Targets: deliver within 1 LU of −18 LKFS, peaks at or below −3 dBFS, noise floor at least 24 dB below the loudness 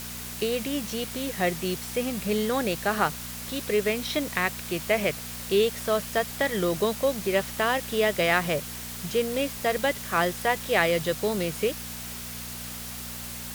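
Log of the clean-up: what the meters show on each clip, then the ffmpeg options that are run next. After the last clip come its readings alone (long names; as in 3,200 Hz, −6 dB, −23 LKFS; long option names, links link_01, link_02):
mains hum 60 Hz; hum harmonics up to 240 Hz; level of the hum −40 dBFS; background noise floor −37 dBFS; target noise floor −51 dBFS; integrated loudness −27.0 LKFS; sample peak −7.0 dBFS; target loudness −18.0 LKFS
→ -af "bandreject=frequency=60:width_type=h:width=4,bandreject=frequency=120:width_type=h:width=4,bandreject=frequency=180:width_type=h:width=4,bandreject=frequency=240:width_type=h:width=4"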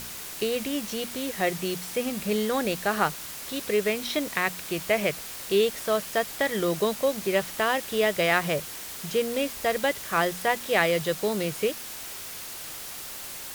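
mains hum none found; background noise floor −39 dBFS; target noise floor −51 dBFS
→ -af "afftdn=noise_reduction=12:noise_floor=-39"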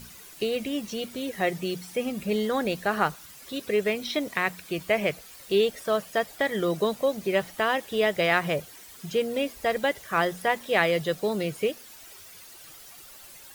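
background noise floor −48 dBFS; target noise floor −51 dBFS
→ -af "afftdn=noise_reduction=6:noise_floor=-48"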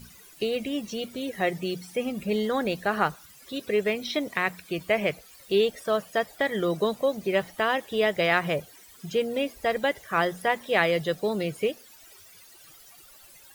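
background noise floor −52 dBFS; integrated loudness −27.0 LKFS; sample peak −7.0 dBFS; target loudness −18.0 LKFS
→ -af "volume=9dB,alimiter=limit=-3dB:level=0:latency=1"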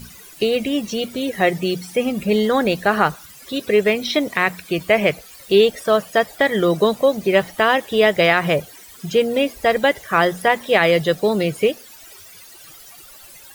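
integrated loudness −18.5 LKFS; sample peak −3.0 dBFS; background noise floor −43 dBFS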